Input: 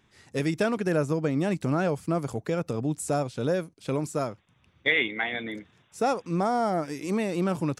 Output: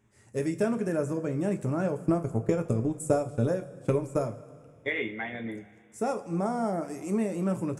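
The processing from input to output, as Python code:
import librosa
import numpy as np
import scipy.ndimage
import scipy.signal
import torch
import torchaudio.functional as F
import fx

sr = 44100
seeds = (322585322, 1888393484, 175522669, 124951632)

y = fx.graphic_eq(x, sr, hz=(125, 500, 4000, 8000), db=(10, 3, -12, 8))
y = fx.transient(y, sr, attack_db=9, sustain_db=-11, at=(1.96, 4.23), fade=0.02)
y = fx.rev_double_slope(y, sr, seeds[0], early_s=0.22, late_s=2.2, knee_db=-19, drr_db=5.0)
y = y * librosa.db_to_amplitude(-7.0)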